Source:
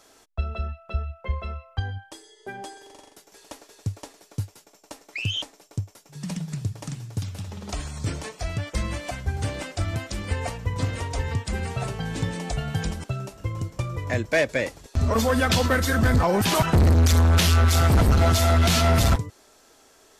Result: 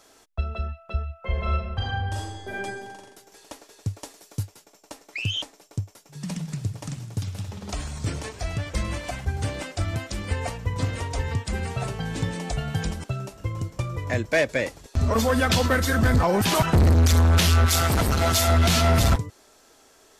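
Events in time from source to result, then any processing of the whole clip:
0:01.19–0:02.59: thrown reverb, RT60 1.2 s, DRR −6 dB
0:04.02–0:04.43: high-shelf EQ 5,300 Hz +6.5 dB
0:06.18–0:09.25: feedback echo with a swinging delay time 100 ms, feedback 64%, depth 202 cents, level −14.5 dB
0:17.66–0:18.48: spectral tilt +1.5 dB per octave

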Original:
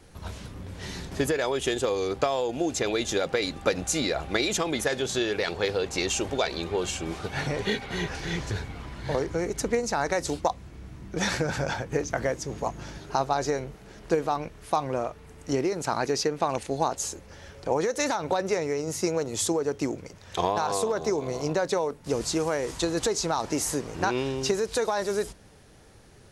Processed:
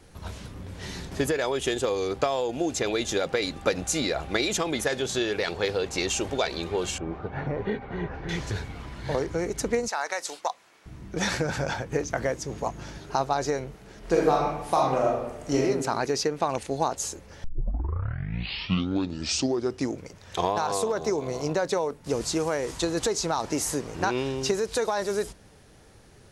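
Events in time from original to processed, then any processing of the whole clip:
0:06.98–0:08.29: low-pass filter 1,300 Hz
0:09.88–0:10.86: high-pass filter 780 Hz
0:13.99–0:15.63: thrown reverb, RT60 0.92 s, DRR −2.5 dB
0:17.44: tape start 2.56 s

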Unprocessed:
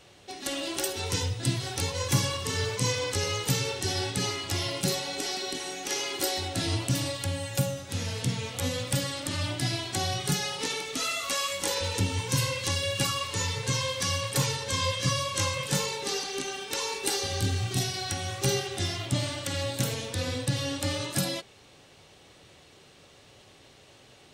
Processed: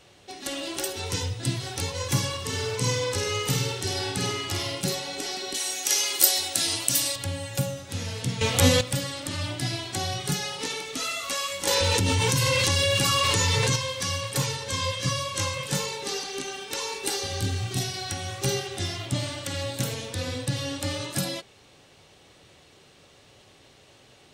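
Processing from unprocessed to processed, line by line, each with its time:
0:02.47–0:04.75: flutter between parallel walls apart 8.6 metres, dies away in 0.47 s
0:05.54–0:07.16: RIAA equalisation recording
0:08.41–0:08.81: clip gain +11.5 dB
0:11.67–0:13.76: envelope flattener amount 100%

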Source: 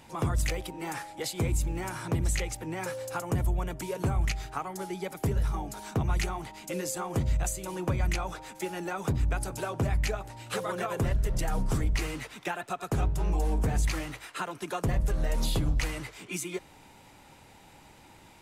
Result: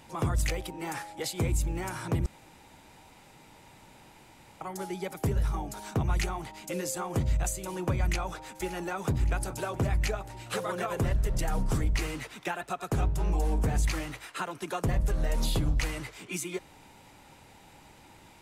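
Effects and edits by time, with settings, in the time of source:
0:02.26–0:04.61: fill with room tone
0:08.03–0:08.96: delay throw 570 ms, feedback 70%, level −17 dB

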